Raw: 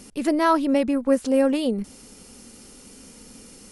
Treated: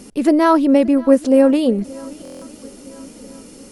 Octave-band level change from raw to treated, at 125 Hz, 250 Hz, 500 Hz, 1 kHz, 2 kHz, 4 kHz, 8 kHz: can't be measured, +8.0 dB, +7.5 dB, +4.5 dB, +3.0 dB, +2.5 dB, +2.0 dB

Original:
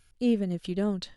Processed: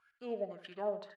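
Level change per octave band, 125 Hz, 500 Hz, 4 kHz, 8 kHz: −23.0 dB, −5.0 dB, −14.0 dB, can't be measured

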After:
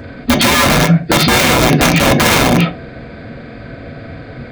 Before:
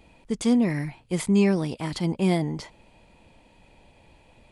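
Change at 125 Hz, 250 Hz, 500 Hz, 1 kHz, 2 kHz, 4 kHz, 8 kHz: +14.0, +9.5, +13.0, +23.0, +24.0, +24.5, +22.0 decibels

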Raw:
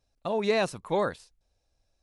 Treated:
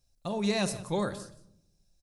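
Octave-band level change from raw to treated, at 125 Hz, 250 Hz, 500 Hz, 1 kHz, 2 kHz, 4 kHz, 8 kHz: +4.0, +3.0, −6.0, −5.5, −4.5, +1.0, +7.0 decibels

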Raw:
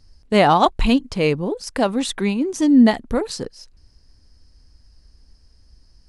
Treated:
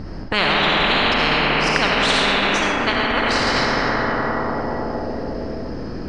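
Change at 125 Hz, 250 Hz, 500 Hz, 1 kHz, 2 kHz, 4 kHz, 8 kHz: +1.0, −6.0, 0.0, +2.5, +12.0, +10.5, +1.0 decibels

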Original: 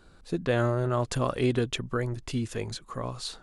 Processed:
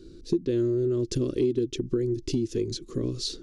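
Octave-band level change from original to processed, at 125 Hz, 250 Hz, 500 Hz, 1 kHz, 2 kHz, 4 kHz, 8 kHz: −2.0 dB, +4.5 dB, +2.5 dB, below −20 dB, −14.0 dB, +1.0 dB, +1.0 dB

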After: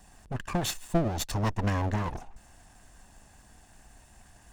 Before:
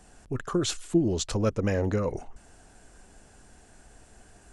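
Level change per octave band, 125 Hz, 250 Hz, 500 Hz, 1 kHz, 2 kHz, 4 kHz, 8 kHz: 0.0, −5.0, −6.0, +5.0, +1.0, −2.0, −2.5 decibels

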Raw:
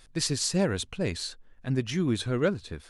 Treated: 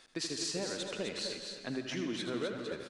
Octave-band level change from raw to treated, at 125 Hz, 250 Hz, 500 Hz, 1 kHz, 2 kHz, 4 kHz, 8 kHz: −17.0, −9.5, −7.5, −7.0, −5.5, −4.5, −8.0 decibels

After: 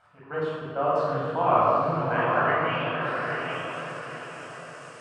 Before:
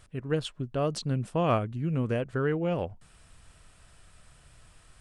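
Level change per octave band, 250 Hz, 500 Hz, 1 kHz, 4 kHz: −2.0, +5.0, +12.0, +2.5 decibels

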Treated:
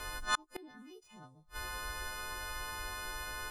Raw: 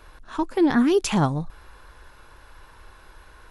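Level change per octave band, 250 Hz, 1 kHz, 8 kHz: −32.0, −10.0, −6.0 decibels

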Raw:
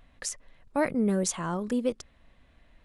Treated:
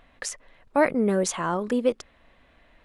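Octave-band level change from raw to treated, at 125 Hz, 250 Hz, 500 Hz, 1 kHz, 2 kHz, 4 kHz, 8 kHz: +0.5, +2.0, +6.5, +7.0, +6.5, +3.0, +0.5 decibels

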